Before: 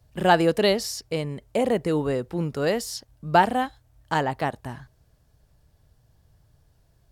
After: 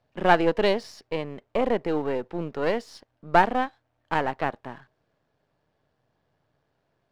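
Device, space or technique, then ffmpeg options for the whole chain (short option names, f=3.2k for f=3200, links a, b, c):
crystal radio: -af "highpass=250,lowpass=2.8k,aeval=exprs='if(lt(val(0),0),0.447*val(0),val(0))':c=same,volume=1.5dB"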